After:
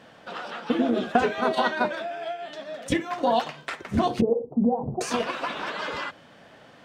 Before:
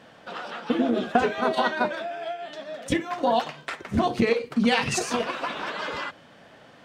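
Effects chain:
0:04.21–0:05.01: Butterworth low-pass 840 Hz 48 dB per octave

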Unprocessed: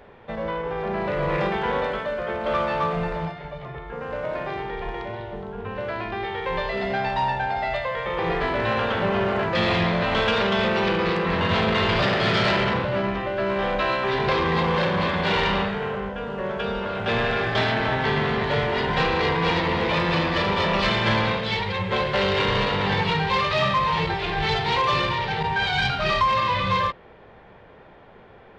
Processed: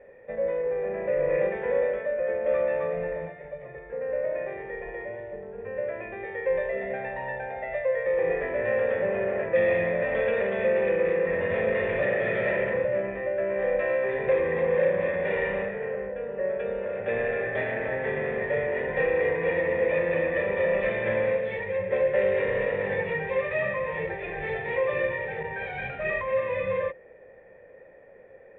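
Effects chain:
formant resonators in series e
level +7 dB

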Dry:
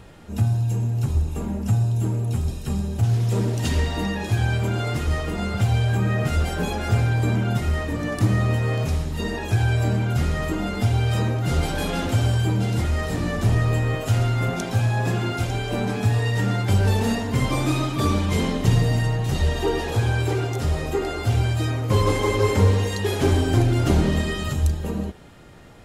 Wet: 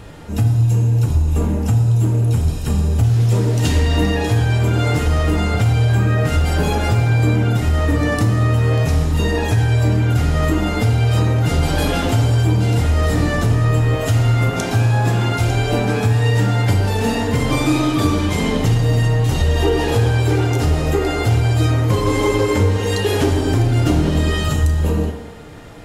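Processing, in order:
downward compressor, threshold −21 dBFS, peak gain reduction 9 dB
feedback delay network reverb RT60 1.5 s, low-frequency decay 0.7×, high-frequency decay 0.55×, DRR 3.5 dB
level +7 dB

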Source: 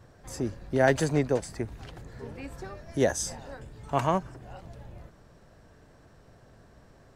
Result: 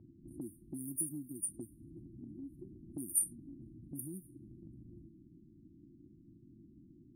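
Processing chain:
linear-phase brick-wall band-stop 360–8,900 Hz
low-pass that shuts in the quiet parts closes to 380 Hz, open at −29.5 dBFS
low-shelf EQ 210 Hz −10 dB
downward compressor 4 to 1, threshold −53 dBFS, peak gain reduction 21 dB
RIAA equalisation recording
level +14.5 dB

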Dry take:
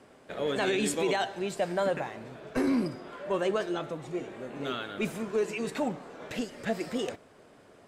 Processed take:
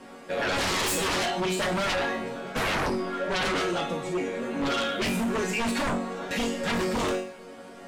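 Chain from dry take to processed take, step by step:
resonators tuned to a chord F#3 major, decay 0.48 s
sine wavefolder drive 19 dB, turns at −31 dBFS
level +7.5 dB

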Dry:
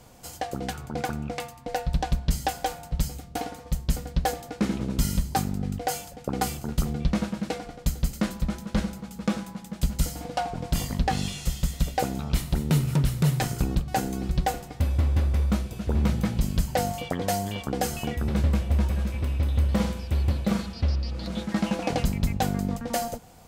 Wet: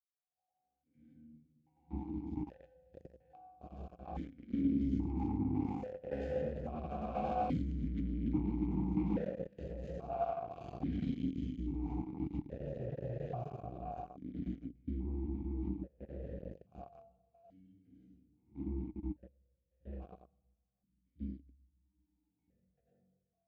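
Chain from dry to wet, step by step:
spectrum averaged block by block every 100 ms
source passing by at 0:07.59, 16 m/s, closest 1.4 metres
noise gate with hold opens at −60 dBFS
convolution reverb RT60 1.2 s, pre-delay 89 ms, DRR −5 dB
in parallel at −9.5 dB: fuzz pedal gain 44 dB, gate −48 dBFS
on the sum: spectral tilt −4 dB per octave
reversed playback
downward compressor 5 to 1, threshold −10 dBFS, peak gain reduction 14 dB
reversed playback
brickwall limiter −9.5 dBFS, peak gain reduction 5 dB
formant filter that steps through the vowels 1.2 Hz
level +3.5 dB

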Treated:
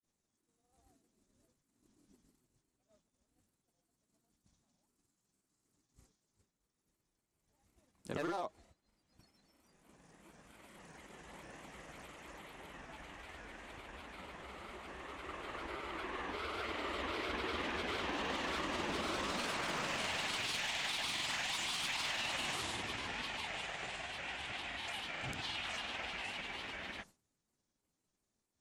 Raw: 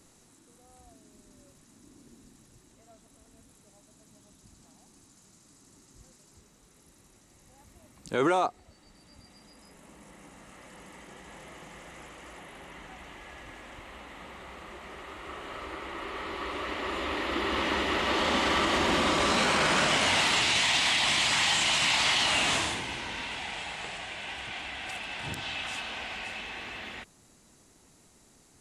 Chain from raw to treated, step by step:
wavefolder on the positive side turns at −20 dBFS
downward expander −46 dBFS
downward compressor 6 to 1, threshold −31 dBFS, peak gain reduction 9 dB
granular cloud, spray 25 ms, pitch spread up and down by 3 semitones
level −3.5 dB

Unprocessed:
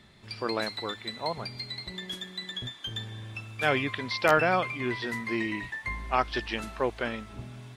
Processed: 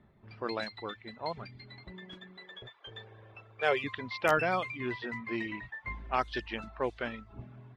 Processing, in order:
reverb reduction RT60 0.52 s
low-pass that shuts in the quiet parts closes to 1,100 Hz, open at −21 dBFS
0:02.37–0:03.84: low shelf with overshoot 340 Hz −8 dB, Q 3
level −4 dB

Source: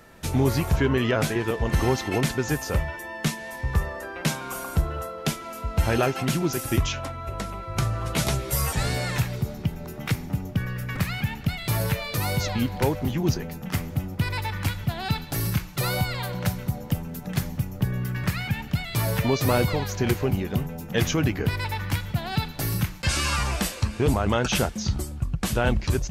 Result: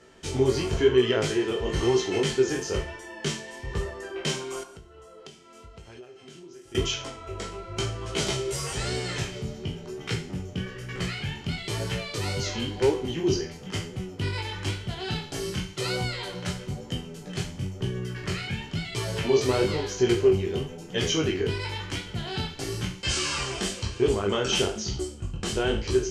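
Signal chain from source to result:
peak hold with a decay on every bin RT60 0.40 s
high-shelf EQ 2,200 Hz +9 dB
chorus effect 1 Hz, delay 16 ms, depth 7.2 ms
parametric band 3,600 Hz −3 dB 0.32 octaves
hollow resonant body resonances 390/3,100 Hz, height 15 dB, ringing for 40 ms
0:04.63–0:06.75: downward compressor 10 to 1, threshold −38 dBFS, peak gain reduction 28 dB
low-pass filter 8,100 Hz 24 dB per octave
tuned comb filter 96 Hz, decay 0.67 s, harmonics all, mix 50%
level −1 dB

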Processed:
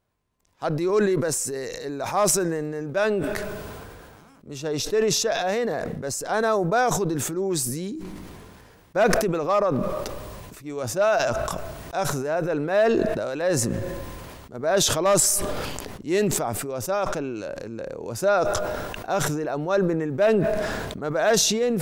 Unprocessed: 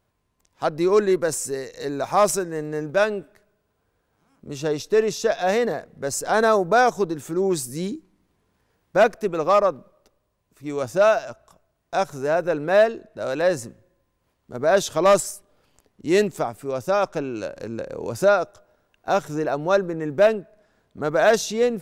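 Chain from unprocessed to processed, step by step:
level that may fall only so fast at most 25 dB per second
level −4.5 dB

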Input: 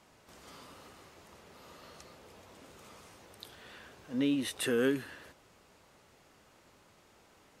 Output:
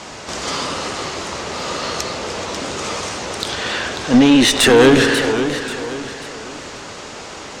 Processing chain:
low-pass filter 7,400 Hz 24 dB per octave
bass and treble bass −4 dB, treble +5 dB
spring reverb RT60 1.5 s, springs 51 ms, DRR 13 dB
tube saturation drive 30 dB, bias 0.55
boost into a limiter +34 dB
feedback echo with a swinging delay time 538 ms, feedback 39%, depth 140 cents, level −9.5 dB
level −2.5 dB

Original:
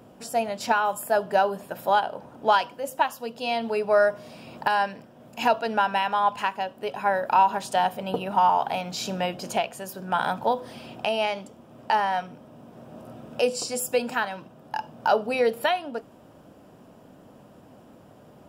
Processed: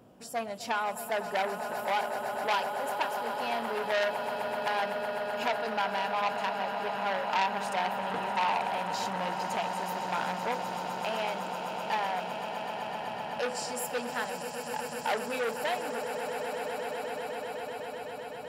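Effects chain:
echo that builds up and dies away 127 ms, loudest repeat 8, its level −12.5 dB
saturating transformer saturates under 2,400 Hz
level −6.5 dB

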